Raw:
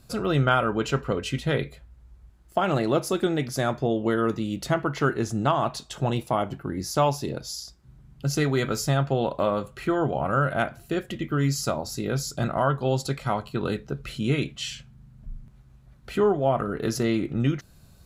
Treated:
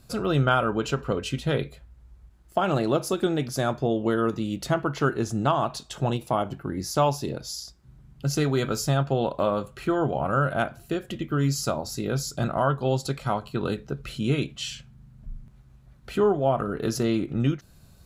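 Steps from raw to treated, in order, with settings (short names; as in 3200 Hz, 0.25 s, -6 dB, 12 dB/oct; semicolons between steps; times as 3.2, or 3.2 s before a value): dynamic EQ 2000 Hz, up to -7 dB, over -50 dBFS, Q 4.6; ending taper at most 310 dB/s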